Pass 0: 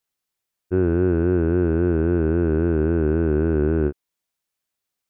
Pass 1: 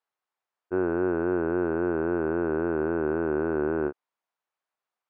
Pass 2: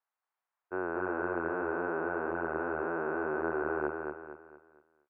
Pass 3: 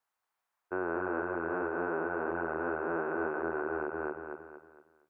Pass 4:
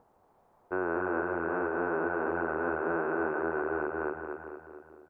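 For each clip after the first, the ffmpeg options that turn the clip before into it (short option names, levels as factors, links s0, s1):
-af "bandpass=f=950:t=q:w=1.3:csg=0,volume=1.68"
-filter_complex "[0:a]acrossover=split=600 2300:gain=0.2 1 0.224[s0][s1][s2];[s0][s1][s2]amix=inputs=3:normalize=0,asplit=2[s3][s4];[s4]aecho=0:1:230|460|690|920|1150:0.631|0.246|0.096|0.0374|0.0146[s5];[s3][s5]amix=inputs=2:normalize=0"
-af "bandreject=f=76:t=h:w=4,bandreject=f=152:t=h:w=4,bandreject=f=228:t=h:w=4,bandreject=f=304:t=h:w=4,bandreject=f=380:t=h:w=4,bandreject=f=456:t=h:w=4,bandreject=f=532:t=h:w=4,bandreject=f=608:t=h:w=4,bandreject=f=684:t=h:w=4,bandreject=f=760:t=h:w=4,bandreject=f=836:t=h:w=4,bandreject=f=912:t=h:w=4,bandreject=f=988:t=h:w=4,bandreject=f=1064:t=h:w=4,bandreject=f=1140:t=h:w=4,bandreject=f=1216:t=h:w=4,bandreject=f=1292:t=h:w=4,bandreject=f=1368:t=h:w=4,bandreject=f=1444:t=h:w=4,bandreject=f=1520:t=h:w=4,bandreject=f=1596:t=h:w=4,bandreject=f=1672:t=h:w=4,bandreject=f=1748:t=h:w=4,bandreject=f=1824:t=h:w=4,bandreject=f=1900:t=h:w=4,bandreject=f=1976:t=h:w=4,bandreject=f=2052:t=h:w=4,bandreject=f=2128:t=h:w=4,bandreject=f=2204:t=h:w=4,bandreject=f=2280:t=h:w=4,alimiter=level_in=1.78:limit=0.0631:level=0:latency=1:release=219,volume=0.562,volume=1.78"
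-filter_complex "[0:a]acrossover=split=680[s0][s1];[s0]acompressor=mode=upward:threshold=0.00631:ratio=2.5[s2];[s2][s1]amix=inputs=2:normalize=0,aecho=1:1:422|844|1266:0.224|0.0515|0.0118,volume=1.33"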